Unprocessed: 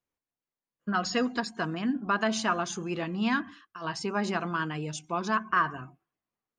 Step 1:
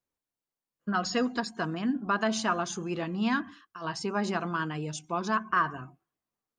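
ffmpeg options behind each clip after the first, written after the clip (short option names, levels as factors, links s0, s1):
-af "equalizer=f=2300:t=o:w=0.94:g=-3"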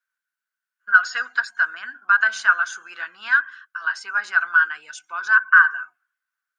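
-af "highpass=f=1500:t=q:w=16"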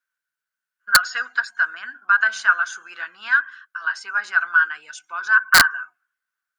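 -af "aeval=exprs='(mod(1.68*val(0)+1,2)-1)/1.68':c=same"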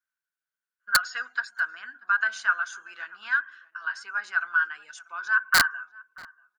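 -filter_complex "[0:a]asplit=2[s0][s1];[s1]adelay=637,lowpass=f=1800:p=1,volume=0.0794,asplit=2[s2][s3];[s3]adelay=637,lowpass=f=1800:p=1,volume=0.23[s4];[s0][s2][s4]amix=inputs=3:normalize=0,volume=0.447"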